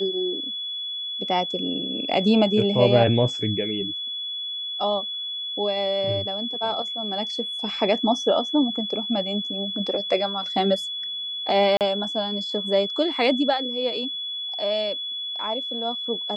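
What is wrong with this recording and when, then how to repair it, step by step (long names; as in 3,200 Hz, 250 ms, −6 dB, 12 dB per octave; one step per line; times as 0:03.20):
whistle 3,400 Hz −28 dBFS
0:11.77–0:11.81: drop-out 38 ms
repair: notch filter 3,400 Hz, Q 30
repair the gap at 0:11.77, 38 ms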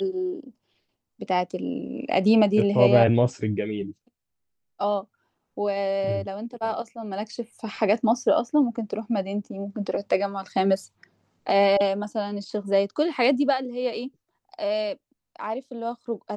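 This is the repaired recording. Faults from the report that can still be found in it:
none of them is left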